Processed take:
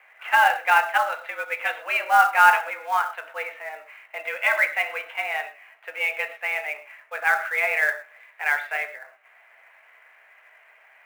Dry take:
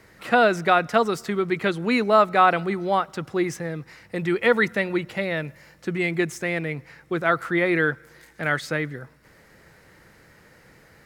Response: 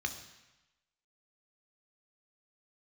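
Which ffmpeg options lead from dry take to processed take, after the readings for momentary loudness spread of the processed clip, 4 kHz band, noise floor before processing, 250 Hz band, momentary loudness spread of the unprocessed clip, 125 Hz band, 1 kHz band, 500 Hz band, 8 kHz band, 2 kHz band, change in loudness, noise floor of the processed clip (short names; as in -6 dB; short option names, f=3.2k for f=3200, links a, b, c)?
17 LU, -1.0 dB, -54 dBFS, under -30 dB, 14 LU, under -30 dB, +2.0 dB, -10.5 dB, 0.0 dB, +4.0 dB, +0.5 dB, -55 dBFS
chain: -filter_complex "[0:a]highpass=f=520:t=q:w=0.5412,highpass=f=520:t=q:w=1.307,lowpass=f=2.8k:t=q:w=0.5176,lowpass=f=2.8k:t=q:w=0.7071,lowpass=f=2.8k:t=q:w=1.932,afreqshift=140[a];[1:a]atrim=start_sample=2205,atrim=end_sample=6174,asetrate=48510,aresample=44100[b];[a][b]afir=irnorm=-1:irlink=0,acrusher=bits=5:mode=log:mix=0:aa=0.000001"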